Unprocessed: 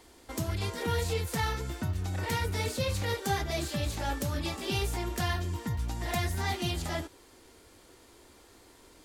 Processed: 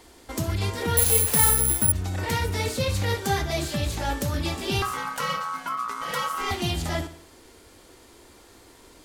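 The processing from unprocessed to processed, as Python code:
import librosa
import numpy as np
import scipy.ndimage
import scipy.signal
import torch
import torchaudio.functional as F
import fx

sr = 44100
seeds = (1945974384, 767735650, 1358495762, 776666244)

y = fx.ring_mod(x, sr, carrier_hz=1200.0, at=(4.82, 6.51))
y = fx.echo_feedback(y, sr, ms=61, feedback_pct=53, wet_db=-15)
y = fx.resample_bad(y, sr, factor=4, down='none', up='zero_stuff', at=(0.97, 1.92))
y = y * librosa.db_to_amplitude(5.0)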